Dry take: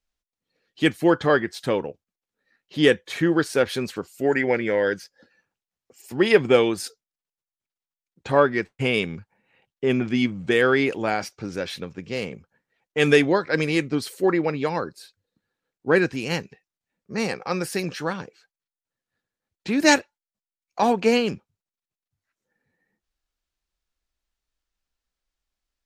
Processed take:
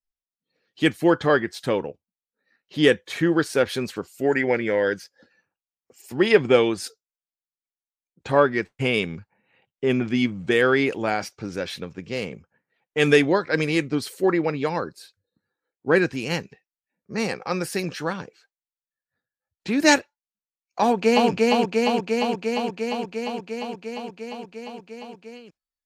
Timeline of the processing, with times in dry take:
6.26–6.82 LPF 8200 Hz
20.81–21.3 echo throw 0.35 s, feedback 80%, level -1 dB
whole clip: spectral noise reduction 16 dB

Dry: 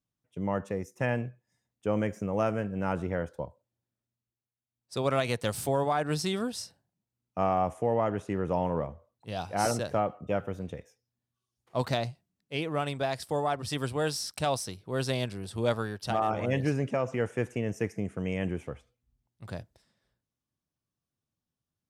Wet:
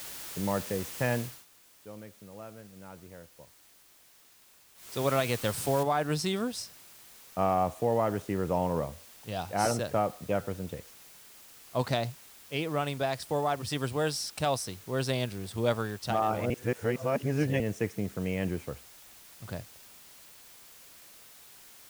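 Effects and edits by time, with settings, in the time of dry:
1.16–5.04 dip -17.5 dB, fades 0.29 s
5.83 noise floor step -42 dB -53 dB
16.5–17.6 reverse

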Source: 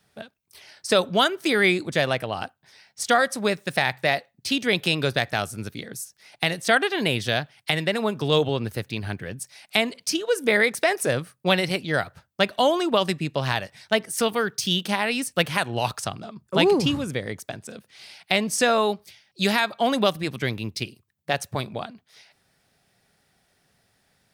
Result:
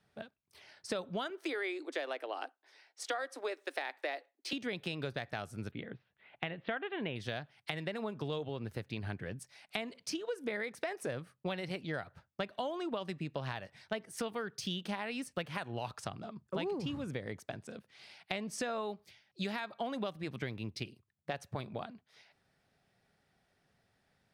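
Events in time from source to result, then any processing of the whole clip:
1.3–4.53 steep high-pass 280 Hz 72 dB/oct
5.71–7.16 steep low-pass 3400 Hz 48 dB/oct
whole clip: LPF 2700 Hz 6 dB/oct; compressor, threshold -28 dBFS; gain -6.5 dB

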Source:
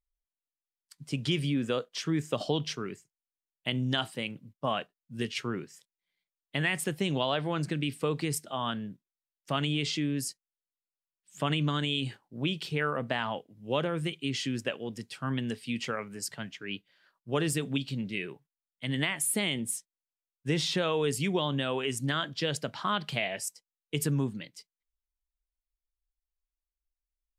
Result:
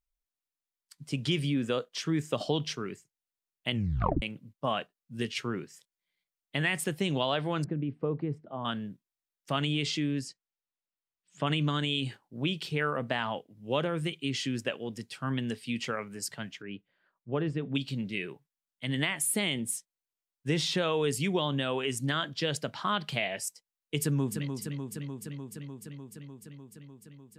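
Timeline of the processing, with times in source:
3.72 tape stop 0.50 s
7.64–8.65 Bessel low-pass 670 Hz
10.19–11.47 air absorption 90 m
16.62–17.75 tape spacing loss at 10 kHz 38 dB
24–24.49 echo throw 0.3 s, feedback 80%, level -6.5 dB

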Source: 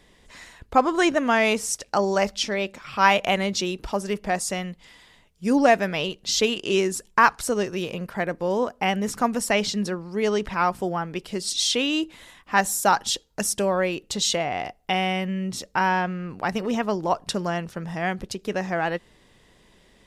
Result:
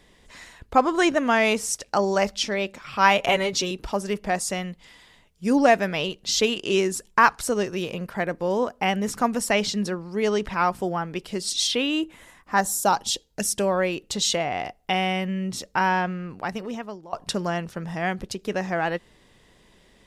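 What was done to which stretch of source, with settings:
3.19–3.71 comb 7.3 ms, depth 73%
11.66–13.55 bell 7600 Hz -> 900 Hz -10 dB
16.09–17.13 fade out, to -22.5 dB

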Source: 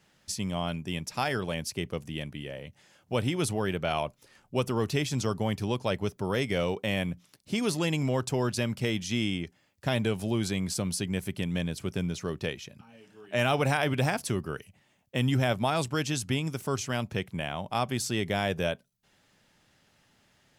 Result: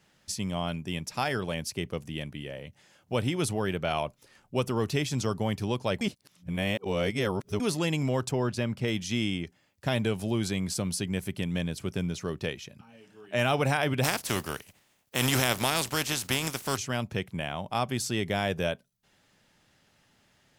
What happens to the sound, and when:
6.01–7.6 reverse
8.31–8.88 high shelf 4100 Hz -9.5 dB
14.03–16.76 spectral contrast lowered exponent 0.48

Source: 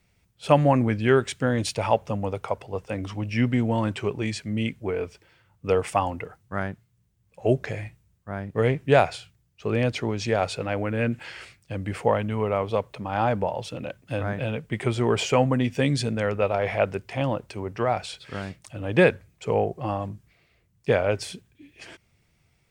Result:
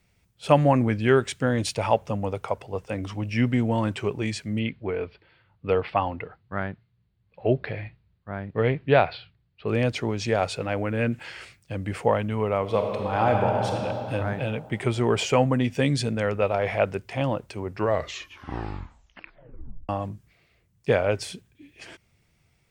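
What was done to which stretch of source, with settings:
4.59–9.68 elliptic low-pass 4400 Hz
12.61–13.76 reverb throw, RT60 3 s, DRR 0.5 dB
17.63 tape stop 2.26 s

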